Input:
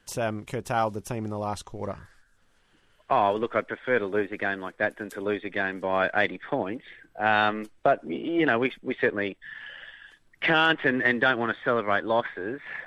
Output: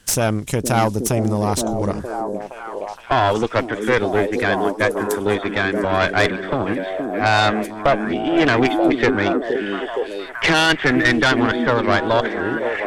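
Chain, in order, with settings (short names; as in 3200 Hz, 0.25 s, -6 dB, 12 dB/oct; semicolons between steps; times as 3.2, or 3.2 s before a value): tone controls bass +6 dB, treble +13 dB; added harmonics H 5 -12 dB, 6 -12 dB, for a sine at -6 dBFS; delay with a stepping band-pass 0.467 s, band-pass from 290 Hz, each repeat 0.7 oct, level -0.5 dB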